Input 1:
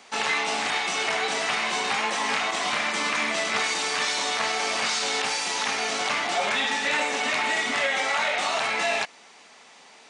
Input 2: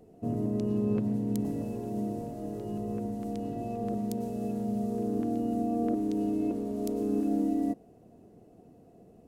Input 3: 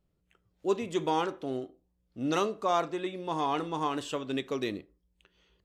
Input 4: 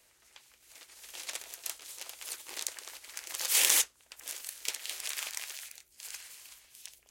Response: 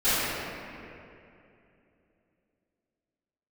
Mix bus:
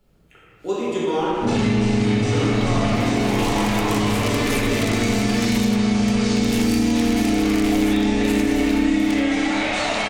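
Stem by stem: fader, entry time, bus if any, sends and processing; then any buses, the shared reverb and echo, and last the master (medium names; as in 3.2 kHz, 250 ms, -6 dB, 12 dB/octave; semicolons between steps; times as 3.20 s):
+1.0 dB, 1.35 s, send -13.5 dB, peaking EQ 1.5 kHz -5 dB 1.6 oct
-5.0 dB, 1.20 s, send -5 dB, tilt EQ -4.5 dB/octave
-2.5 dB, 0.00 s, send -5 dB, three bands compressed up and down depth 40%
-2.0 dB, 2.25 s, no send, peaking EQ 2.3 kHz +8.5 dB 1.4 oct; compressor with a negative ratio -37 dBFS, ratio -0.5; waveshaping leveller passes 3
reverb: on, RT60 2.7 s, pre-delay 3 ms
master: compression 3:1, threshold -18 dBFS, peak gain reduction 9.5 dB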